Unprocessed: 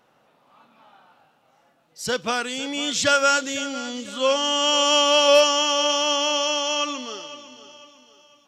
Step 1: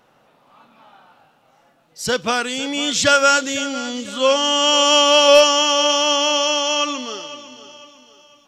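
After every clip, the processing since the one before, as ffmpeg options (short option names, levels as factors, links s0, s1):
-af "lowshelf=f=62:g=8,volume=1.68"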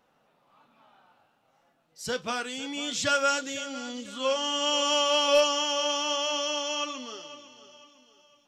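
-af "flanger=delay=3.7:depth=9.3:regen=-58:speed=0.25:shape=triangular,volume=0.447"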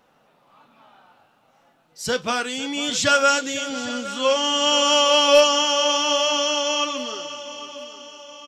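-af "aecho=1:1:811|1622|2433|3244|4055:0.158|0.0824|0.0429|0.0223|0.0116,volume=2.37"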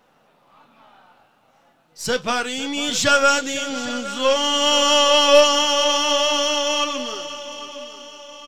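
-af "aeval=exprs='if(lt(val(0),0),0.708*val(0),val(0))':c=same,volume=1.41"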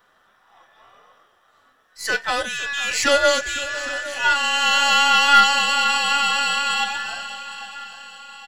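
-af "afftfilt=real='real(if(between(b,1,1012),(2*floor((b-1)/92)+1)*92-b,b),0)':imag='imag(if(between(b,1,1012),(2*floor((b-1)/92)+1)*92-b,b),0)*if(between(b,1,1012),-1,1)':win_size=2048:overlap=0.75,volume=0.891"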